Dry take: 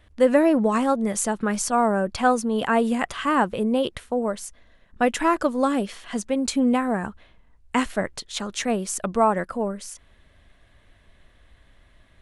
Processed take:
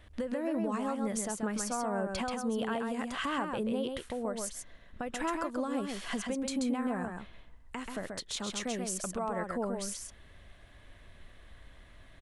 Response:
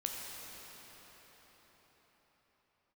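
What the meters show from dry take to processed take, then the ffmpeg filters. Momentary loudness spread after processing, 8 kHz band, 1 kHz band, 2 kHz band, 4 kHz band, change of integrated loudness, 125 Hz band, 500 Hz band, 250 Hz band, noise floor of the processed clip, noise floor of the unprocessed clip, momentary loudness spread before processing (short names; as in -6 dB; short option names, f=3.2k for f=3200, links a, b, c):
8 LU, -7.0 dB, -13.0 dB, -11.0 dB, -7.0 dB, -11.5 dB, -9.0 dB, -12.5 dB, -11.0 dB, -56 dBFS, -57 dBFS, 9 LU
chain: -af "acompressor=threshold=-28dB:ratio=6,alimiter=level_in=1dB:limit=-24dB:level=0:latency=1:release=253,volume=-1dB,aecho=1:1:133:0.596"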